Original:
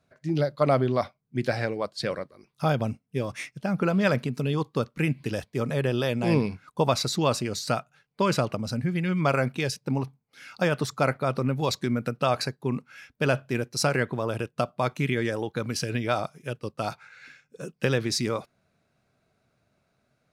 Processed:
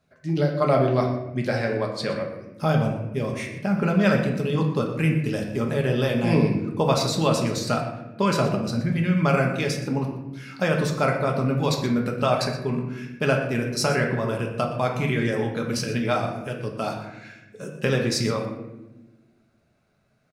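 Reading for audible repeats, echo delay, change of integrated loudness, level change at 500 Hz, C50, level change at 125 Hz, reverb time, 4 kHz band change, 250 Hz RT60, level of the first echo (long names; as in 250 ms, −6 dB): 1, 120 ms, +3.5 dB, +3.0 dB, 5.5 dB, +4.0 dB, 1.0 s, +1.5 dB, 1.8 s, −13.0 dB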